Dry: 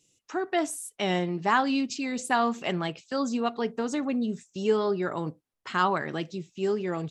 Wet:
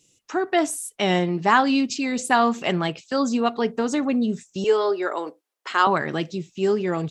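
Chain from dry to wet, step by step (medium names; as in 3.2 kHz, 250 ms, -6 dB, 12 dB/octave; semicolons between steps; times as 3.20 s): 4.64–5.87 s: high-pass 360 Hz 24 dB/octave; trim +6 dB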